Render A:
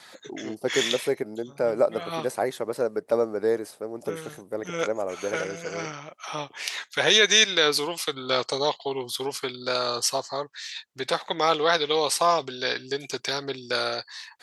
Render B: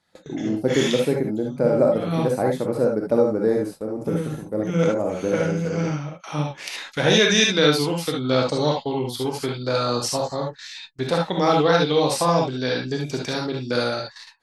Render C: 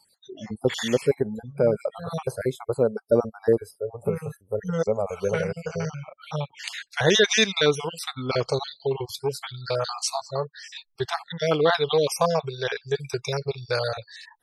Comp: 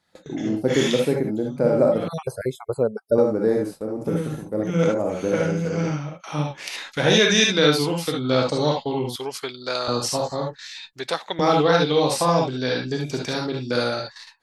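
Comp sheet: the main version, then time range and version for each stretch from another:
B
2.08–3.18 from C
9.16–9.88 from A
10.93–11.39 from A

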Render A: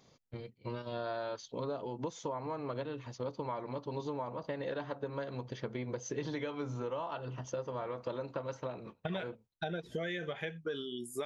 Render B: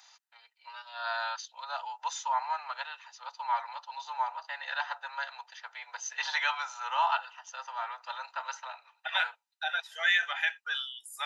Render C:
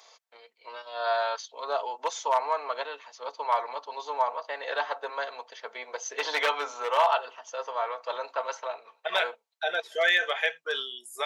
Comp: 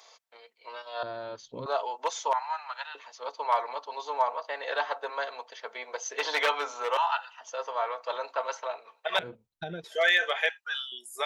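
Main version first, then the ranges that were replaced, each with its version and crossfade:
C
1.03–1.66 from A
2.33–2.95 from B
6.97–7.41 from B
9.19–9.84 from A
10.49–10.92 from B

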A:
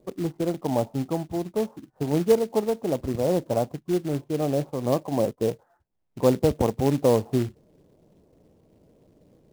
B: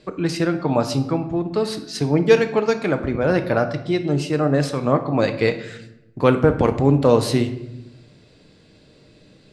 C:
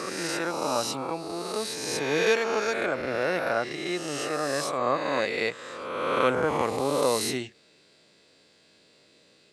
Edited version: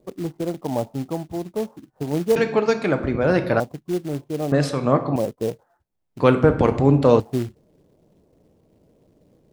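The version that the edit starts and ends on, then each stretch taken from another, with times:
A
2.36–3.6 from B
4.52–5.16 from B
6.2–7.2 from B
not used: C

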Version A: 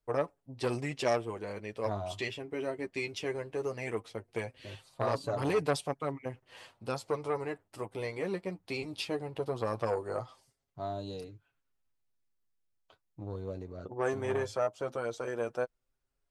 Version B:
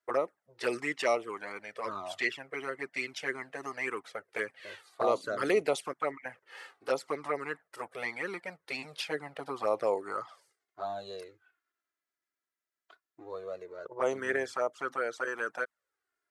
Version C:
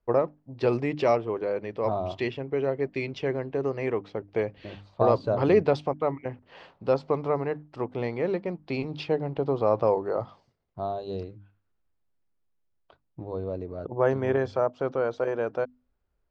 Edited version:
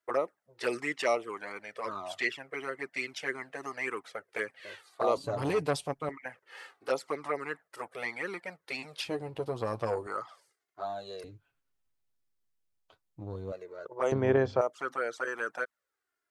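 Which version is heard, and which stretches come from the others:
B
5.17–6.09 from A
9.05–10.07 from A
11.24–13.52 from A
14.12–14.61 from C

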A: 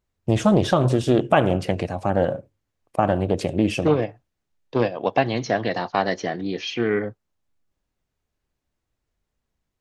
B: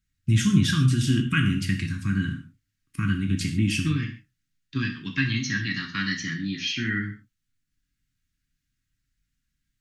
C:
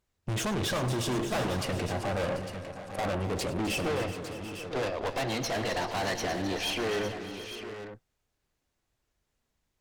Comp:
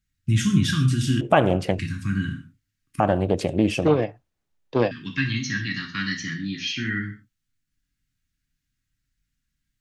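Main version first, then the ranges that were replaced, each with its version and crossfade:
B
1.21–1.79 from A
3–4.91 from A
not used: C

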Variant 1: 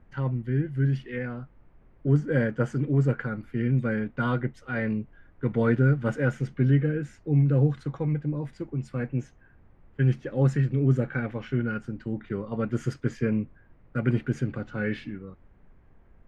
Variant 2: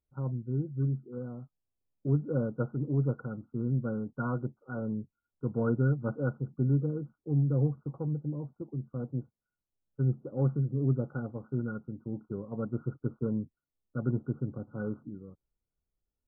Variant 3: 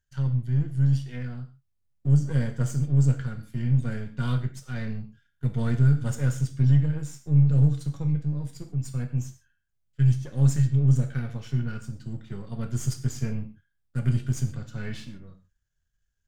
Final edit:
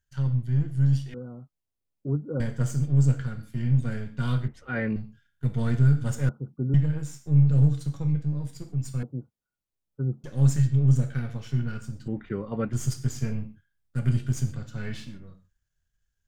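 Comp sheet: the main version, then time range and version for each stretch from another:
3
1.14–2.4 from 2
4.48–4.96 from 1
6.29–6.74 from 2
9.03–10.24 from 2
12.08–12.73 from 1

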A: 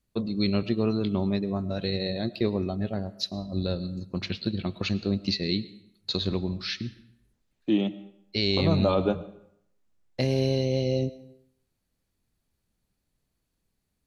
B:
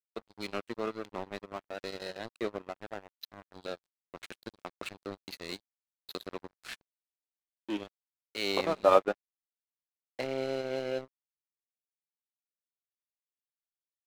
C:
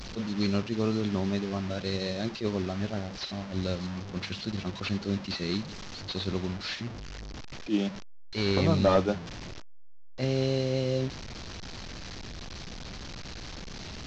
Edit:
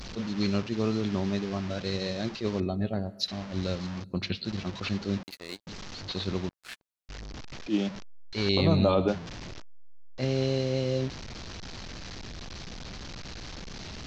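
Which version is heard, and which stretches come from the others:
C
2.6–3.28 from A
4.04–4.45 from A
5.23–5.67 from B
6.49–7.09 from B
8.49–9.08 from A

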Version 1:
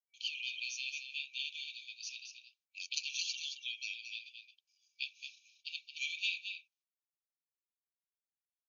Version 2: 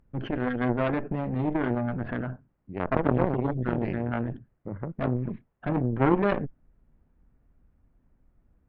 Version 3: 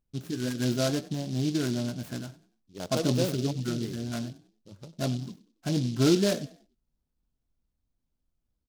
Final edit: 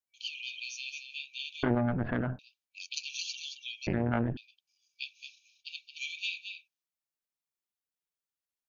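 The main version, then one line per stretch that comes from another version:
1
1.63–2.39 from 2
3.87–4.37 from 2
not used: 3

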